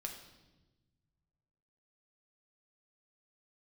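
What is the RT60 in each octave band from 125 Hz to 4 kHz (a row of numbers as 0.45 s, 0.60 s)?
2.5 s, 1.8 s, 1.3 s, 0.95 s, 0.95 s, 1.0 s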